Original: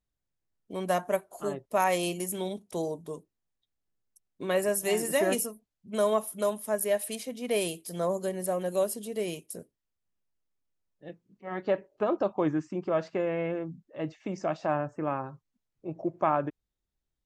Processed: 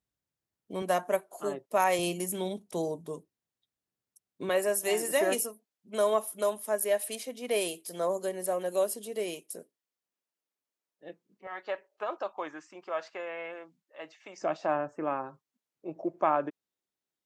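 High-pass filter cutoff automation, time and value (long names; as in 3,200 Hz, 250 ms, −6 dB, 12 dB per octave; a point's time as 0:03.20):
83 Hz
from 0:00.82 230 Hz
from 0:01.99 100 Hz
from 0:04.49 310 Hz
from 0:11.47 840 Hz
from 0:14.42 270 Hz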